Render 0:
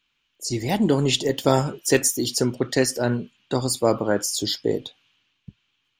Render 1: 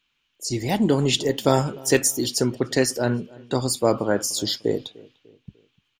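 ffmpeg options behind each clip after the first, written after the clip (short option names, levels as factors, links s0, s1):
-filter_complex "[0:a]asplit=2[s0][s1];[s1]adelay=298,lowpass=f=1500:p=1,volume=0.075,asplit=2[s2][s3];[s3]adelay=298,lowpass=f=1500:p=1,volume=0.46,asplit=2[s4][s5];[s5]adelay=298,lowpass=f=1500:p=1,volume=0.46[s6];[s0][s2][s4][s6]amix=inputs=4:normalize=0"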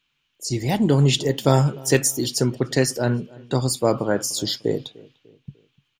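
-af "equalizer=f=140:w=4.1:g=8.5"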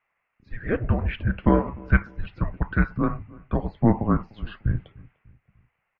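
-af "bandreject=f=79.55:t=h:w=4,bandreject=f=159.1:t=h:w=4,bandreject=f=238.65:t=h:w=4,bandreject=f=318.2:t=h:w=4,highpass=f=370:t=q:w=0.5412,highpass=f=370:t=q:w=1.307,lowpass=f=2300:t=q:w=0.5176,lowpass=f=2300:t=q:w=0.7071,lowpass=f=2300:t=q:w=1.932,afreqshift=-340,volume=1.33"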